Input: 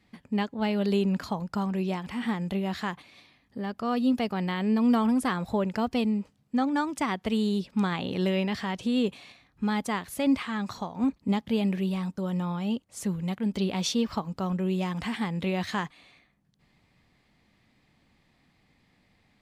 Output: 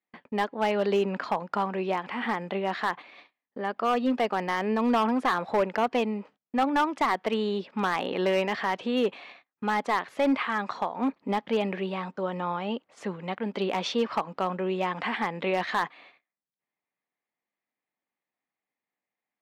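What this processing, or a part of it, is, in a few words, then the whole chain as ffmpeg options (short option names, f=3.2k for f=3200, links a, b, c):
walkie-talkie: -af "highpass=450,lowpass=2.3k,asoftclip=type=hard:threshold=-26dB,agate=range=-28dB:threshold=-59dB:ratio=16:detection=peak,volume=8dB"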